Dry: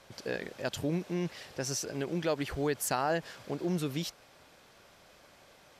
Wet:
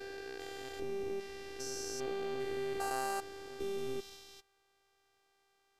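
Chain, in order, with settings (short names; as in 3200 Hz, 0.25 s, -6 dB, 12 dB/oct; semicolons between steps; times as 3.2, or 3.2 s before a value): stepped spectrum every 0.4 s; gate -50 dBFS, range -13 dB; robotiser 394 Hz; gain +1 dB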